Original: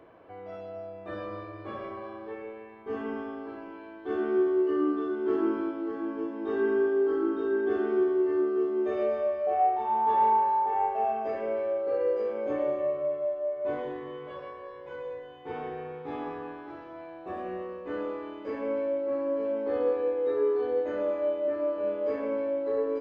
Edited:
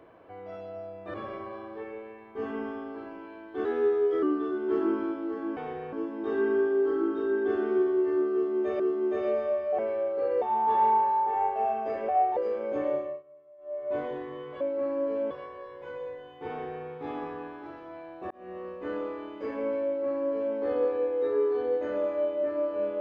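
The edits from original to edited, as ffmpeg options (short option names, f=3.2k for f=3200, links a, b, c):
-filter_complex "[0:a]asplit=16[a][b][c][d][e][f][g][h][i][j][k][l][m][n][o][p];[a]atrim=end=1.142[q];[b]atrim=start=1.648:end=4.164[r];[c]atrim=start=4.16:end=4.8,asetpts=PTS-STARTPTS,asetrate=48951,aresample=44100,atrim=end_sample=25427,asetpts=PTS-STARTPTS[s];[d]atrim=start=4.796:end=6.142[t];[e]atrim=start=15.528:end=15.892[u];[f]atrim=start=6.138:end=9.012[v];[g]atrim=start=8.538:end=9.532[w];[h]atrim=start=11.478:end=12.112[x];[i]atrim=start=9.808:end=11.482[y];[j]atrim=start=9.528:end=9.812[z];[k]atrim=start=12.108:end=12.97,asetpts=PTS-STARTPTS,afade=t=out:st=0.572:d=0.29:silence=0.0630957[aa];[l]atrim=start=12.97:end=13.32,asetpts=PTS-STARTPTS,volume=-24dB[ab];[m]atrim=start=13.32:end=14.352,asetpts=PTS-STARTPTS,afade=t=in:d=0.29:silence=0.0630957[ac];[n]atrim=start=18.898:end=19.602[ad];[o]atrim=start=14.348:end=17.35,asetpts=PTS-STARTPTS,afade=t=out:st=2.998:d=0.004:c=hsin[ae];[p]atrim=start=17.35,asetpts=PTS-STARTPTS,afade=t=in:d=0.37[af];[q][r]acrossfade=d=0.004:c1=hsin:c2=hsin[ag];[ag][s]acrossfade=d=0.004:c1=hsin:c2=hsin[ah];[ah][t]acrossfade=d=0.004:c1=hsin:c2=hsin[ai];[ai][u]acrossfade=d=0.004:c1=hsin:c2=hsin[aj];[aj][v]acrossfade=d=0.004:c1=hsin:c2=hsin[ak];[ak][w]acrossfade=d=0.004:c1=hsin:c2=hsin[al];[al][x]acrossfade=d=0.004:c1=hsin:c2=hsin[am];[am][y]acrossfade=d=0.004:c1=hsin:c2=hsin[an];[an][z]acrossfade=d=0.004:c1=hsin:c2=hsin[ao];[aa][ab][ac]concat=n=3:v=0:a=1[ap];[ao][ap]acrossfade=d=0.004:c1=hsin:c2=hsin[aq];[aq][ad]acrossfade=d=0.004:c1=hsin:c2=hsin[ar];[ae][af]concat=n=2:v=0:a=1[as];[ar][as]acrossfade=d=0.004:c1=hsin:c2=hsin"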